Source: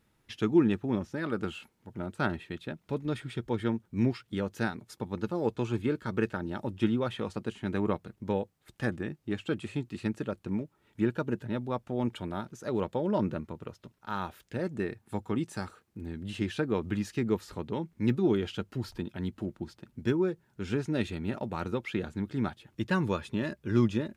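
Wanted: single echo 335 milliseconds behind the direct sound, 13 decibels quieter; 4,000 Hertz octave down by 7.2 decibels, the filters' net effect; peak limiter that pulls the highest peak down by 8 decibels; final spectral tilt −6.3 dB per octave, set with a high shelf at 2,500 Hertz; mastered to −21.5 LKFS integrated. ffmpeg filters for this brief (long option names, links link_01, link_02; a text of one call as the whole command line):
ffmpeg -i in.wav -af "highshelf=frequency=2500:gain=-6.5,equalizer=frequency=4000:width_type=o:gain=-4,alimiter=limit=-21dB:level=0:latency=1,aecho=1:1:335:0.224,volume=13dB" out.wav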